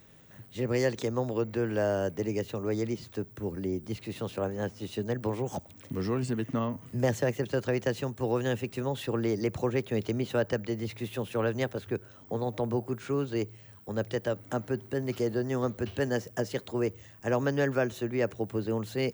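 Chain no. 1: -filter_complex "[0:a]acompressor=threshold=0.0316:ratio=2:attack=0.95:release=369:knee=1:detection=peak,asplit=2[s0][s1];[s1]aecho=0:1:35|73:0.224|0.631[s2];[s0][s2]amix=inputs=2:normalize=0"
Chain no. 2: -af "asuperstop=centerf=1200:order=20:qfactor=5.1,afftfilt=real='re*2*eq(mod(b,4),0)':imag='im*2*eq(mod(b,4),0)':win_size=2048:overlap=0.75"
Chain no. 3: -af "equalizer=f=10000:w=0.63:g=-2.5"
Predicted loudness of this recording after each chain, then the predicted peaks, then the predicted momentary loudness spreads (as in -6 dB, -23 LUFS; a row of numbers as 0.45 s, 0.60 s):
-34.0 LUFS, -34.5 LUFS, -31.5 LUFS; -20.0 dBFS, -15.5 dBFS, -15.0 dBFS; 5 LU, 9 LU, 8 LU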